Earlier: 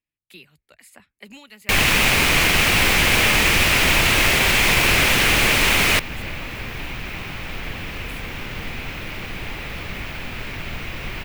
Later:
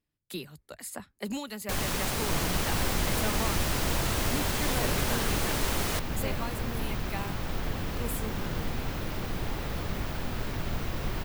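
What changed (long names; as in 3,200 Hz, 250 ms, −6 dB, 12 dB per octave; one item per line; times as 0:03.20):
speech +10.5 dB
first sound −9.5 dB
master: add parametric band 2,400 Hz −14 dB 1 octave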